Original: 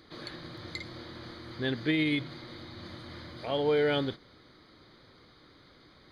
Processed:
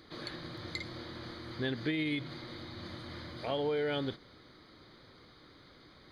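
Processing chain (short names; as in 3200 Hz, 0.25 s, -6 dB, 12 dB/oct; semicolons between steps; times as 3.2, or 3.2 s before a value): compressor, threshold -30 dBFS, peak gain reduction 7 dB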